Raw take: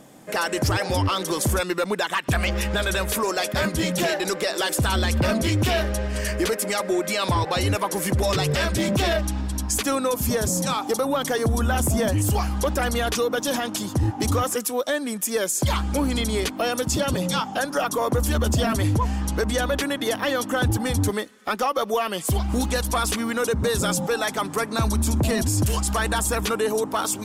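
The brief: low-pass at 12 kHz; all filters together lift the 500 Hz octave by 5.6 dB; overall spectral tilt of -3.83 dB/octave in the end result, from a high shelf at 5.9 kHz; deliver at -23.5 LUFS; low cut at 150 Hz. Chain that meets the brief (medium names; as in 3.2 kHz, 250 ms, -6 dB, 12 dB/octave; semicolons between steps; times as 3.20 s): high-pass 150 Hz; low-pass 12 kHz; peaking EQ 500 Hz +6.5 dB; treble shelf 5.9 kHz +7.5 dB; trim -2.5 dB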